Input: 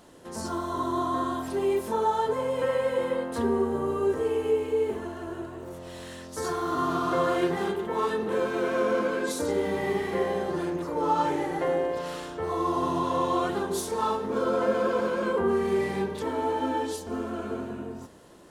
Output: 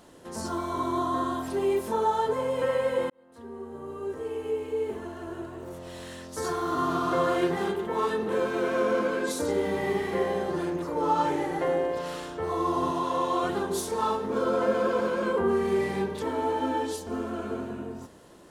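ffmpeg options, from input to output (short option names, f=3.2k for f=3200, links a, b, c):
-filter_complex "[0:a]asettb=1/sr,asplit=3[a][b][c];[a]atrim=end=0.584[d];[b]atrim=start=0.58:end=0.98,asetpts=PTS-STARTPTS,afade=t=in:d=0.004:c=qsin,afade=t=out:st=0.396:d=0.004:c=qsin,aeval=exprs='val(0)+0.002*sin(2*PI*2300*n/s)':c=same[e];[c]atrim=start=0.976[f];[d][e]acrossfade=d=0.004:c1=hsin:c2=qsin[g];[g][f]acrossfade=d=0.004:c1=qsin:c2=hsin,asettb=1/sr,asplit=3[h][i][j];[h]atrim=end=12.914[k];[i]atrim=start=12.91:end=13.43,asetpts=PTS-STARTPTS,afade=t=in:d=0.004:c=qsin,afade=t=out:st=0.516:d=0.004:c=qsin,lowshelf=f=190:g=-10[l];[j]atrim=start=13.426[m];[k][l]acrossfade=d=0.004:c1=hsin:c2=qsin[n];[n][m]acrossfade=d=0.004:c1=qsin:c2=hsin,asplit=2[o][p];[o]atrim=end=3.1,asetpts=PTS-STARTPTS,afade=t=out:st=3.096:d=0.004:c=hsin[q];[p]atrim=start=3.1,asetpts=PTS-STARTPTS,afade=t=in:d=2.58[r];[q][r]concat=n=2:v=0:a=1"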